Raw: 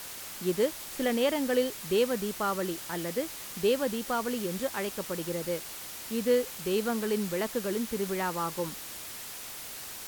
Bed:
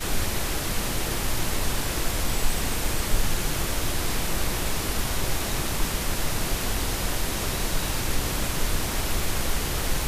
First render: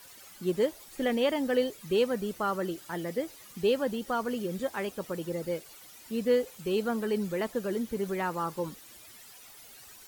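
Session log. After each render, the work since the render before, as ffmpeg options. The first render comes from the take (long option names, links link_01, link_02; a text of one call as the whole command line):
ffmpeg -i in.wav -af "afftdn=noise_reduction=13:noise_floor=-42" out.wav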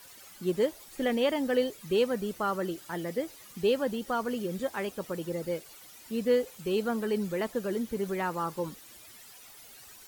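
ffmpeg -i in.wav -af anull out.wav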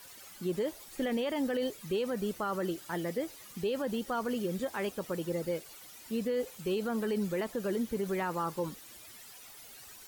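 ffmpeg -i in.wav -af "alimiter=limit=-24dB:level=0:latency=1:release=31" out.wav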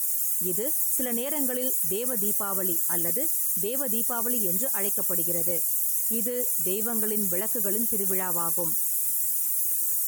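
ffmpeg -i in.wav -af "aexciter=amount=15.9:drive=5.8:freq=6400" out.wav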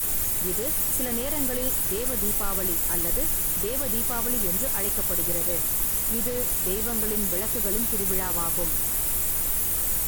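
ffmpeg -i in.wav -i bed.wav -filter_complex "[1:a]volume=-8.5dB[link_01];[0:a][link_01]amix=inputs=2:normalize=0" out.wav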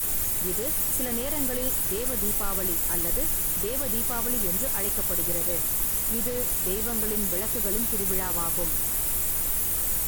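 ffmpeg -i in.wav -af "volume=-1dB" out.wav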